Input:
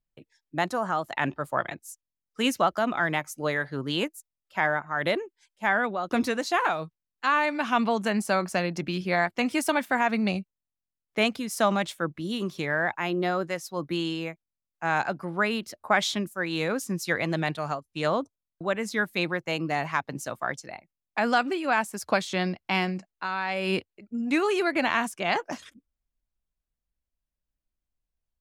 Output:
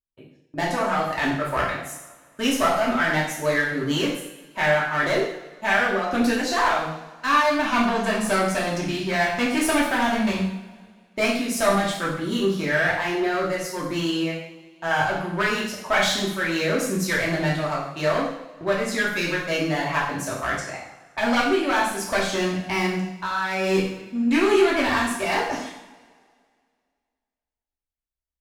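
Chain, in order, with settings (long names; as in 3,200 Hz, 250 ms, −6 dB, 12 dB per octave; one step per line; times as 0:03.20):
asymmetric clip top −26 dBFS
noise gate −51 dBFS, range −14 dB
coupled-rooms reverb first 0.69 s, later 2.1 s, from −18 dB, DRR −6 dB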